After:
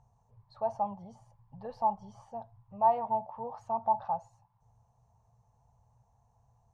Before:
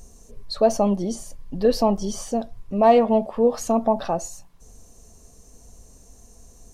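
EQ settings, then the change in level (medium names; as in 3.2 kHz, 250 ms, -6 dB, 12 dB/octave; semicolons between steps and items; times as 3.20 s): two resonant band-passes 320 Hz, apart 2.9 oct; 0.0 dB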